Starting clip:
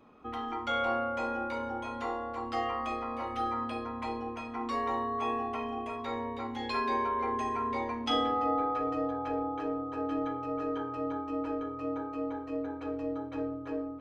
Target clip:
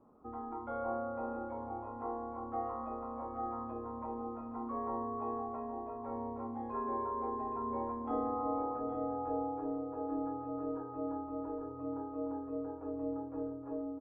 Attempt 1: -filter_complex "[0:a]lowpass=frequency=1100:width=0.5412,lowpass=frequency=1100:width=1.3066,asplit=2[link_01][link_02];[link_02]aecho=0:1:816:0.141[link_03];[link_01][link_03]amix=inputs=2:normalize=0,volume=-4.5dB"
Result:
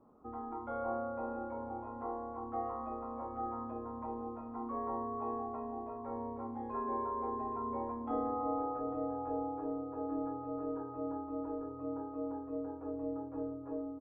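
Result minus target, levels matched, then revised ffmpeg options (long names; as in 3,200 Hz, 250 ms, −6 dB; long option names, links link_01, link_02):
echo-to-direct −7 dB
-filter_complex "[0:a]lowpass=frequency=1100:width=0.5412,lowpass=frequency=1100:width=1.3066,asplit=2[link_01][link_02];[link_02]aecho=0:1:816:0.316[link_03];[link_01][link_03]amix=inputs=2:normalize=0,volume=-4.5dB"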